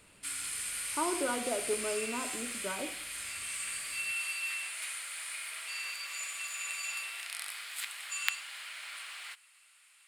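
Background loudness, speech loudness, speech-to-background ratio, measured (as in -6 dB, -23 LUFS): -36.0 LUFS, -37.0 LUFS, -1.0 dB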